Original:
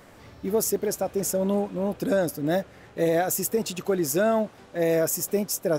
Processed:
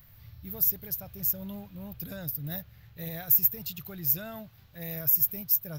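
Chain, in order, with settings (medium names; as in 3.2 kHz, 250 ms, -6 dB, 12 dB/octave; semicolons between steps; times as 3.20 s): FFT filter 130 Hz 0 dB, 240 Hz -22 dB, 370 Hz -28 dB, 4.2 kHz -8 dB, 9.5 kHz -21 dB, 14 kHz +12 dB; trim +2.5 dB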